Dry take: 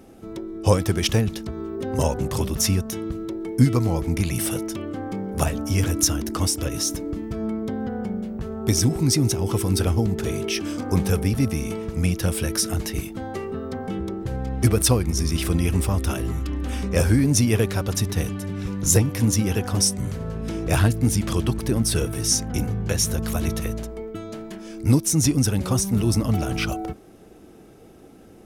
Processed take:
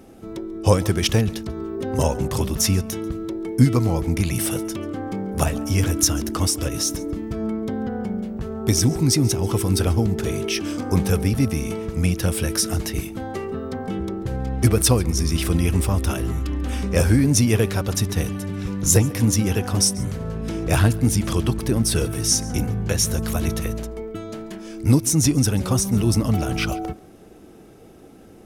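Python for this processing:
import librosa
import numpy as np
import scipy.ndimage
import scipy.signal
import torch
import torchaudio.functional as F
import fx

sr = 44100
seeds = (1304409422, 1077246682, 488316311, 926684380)

y = x + 10.0 ** (-21.5 / 20.0) * np.pad(x, (int(139 * sr / 1000.0), 0))[:len(x)]
y = y * librosa.db_to_amplitude(1.5)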